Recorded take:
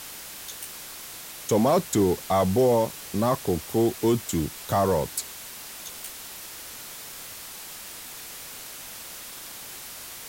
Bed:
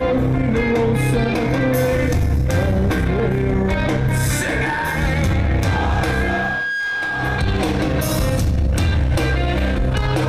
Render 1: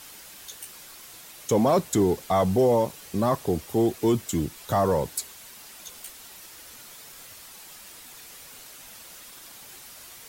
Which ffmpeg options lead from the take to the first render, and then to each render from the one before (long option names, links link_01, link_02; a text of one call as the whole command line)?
ffmpeg -i in.wav -af "afftdn=noise_reduction=7:noise_floor=-41" out.wav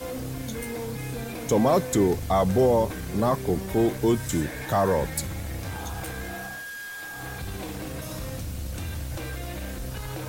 ffmpeg -i in.wav -i bed.wav -filter_complex "[1:a]volume=-16dB[link_01];[0:a][link_01]amix=inputs=2:normalize=0" out.wav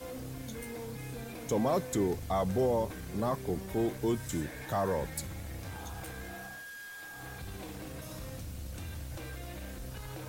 ffmpeg -i in.wav -af "volume=-8.5dB" out.wav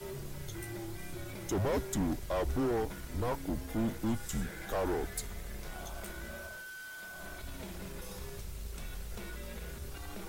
ffmpeg -i in.wav -af "asoftclip=type=hard:threshold=-27.5dB,afreqshift=-120" out.wav